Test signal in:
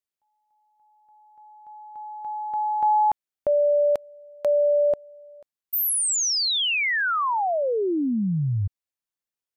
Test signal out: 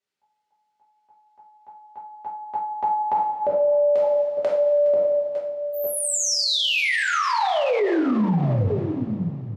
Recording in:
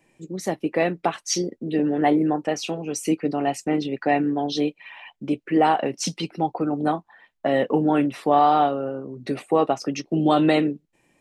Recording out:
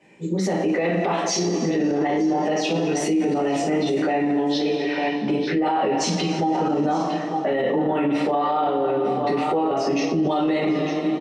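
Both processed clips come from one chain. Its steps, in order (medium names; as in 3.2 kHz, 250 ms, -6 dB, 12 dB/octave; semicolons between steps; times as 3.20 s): delay 905 ms -14.5 dB; dynamic bell 1.5 kHz, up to -7 dB, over -49 dBFS, Q 7.9; band-pass 120–5000 Hz; two-slope reverb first 0.38 s, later 2.7 s, from -18 dB, DRR -8 dB; peak limiter -17 dBFS; trim +2.5 dB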